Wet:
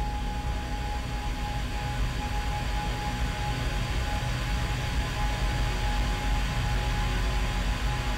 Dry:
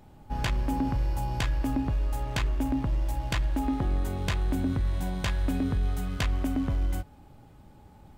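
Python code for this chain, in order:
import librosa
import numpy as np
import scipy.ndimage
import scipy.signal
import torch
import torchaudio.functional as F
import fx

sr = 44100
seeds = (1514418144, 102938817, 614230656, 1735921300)

y = fx.paulstretch(x, sr, seeds[0], factor=45.0, window_s=0.5, from_s=0.32)
y = np.clip(y, -10.0 ** (-20.5 / 20.0), 10.0 ** (-20.5 / 20.0))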